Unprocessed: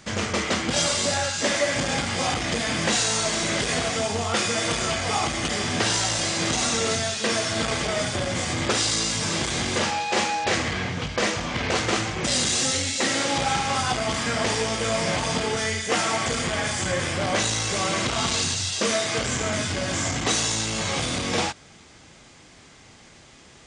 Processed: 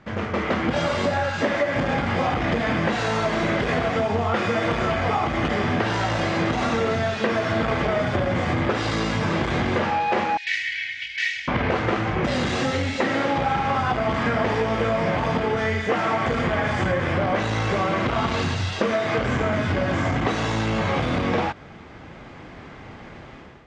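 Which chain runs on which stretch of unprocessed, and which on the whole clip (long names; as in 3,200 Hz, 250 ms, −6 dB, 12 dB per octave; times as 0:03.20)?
0:10.37–0:11.48: elliptic high-pass filter 1,900 Hz + comb filter 2.7 ms, depth 73%
whole clip: automatic gain control; low-pass filter 1,800 Hz 12 dB per octave; downward compressor, threshold −19 dBFS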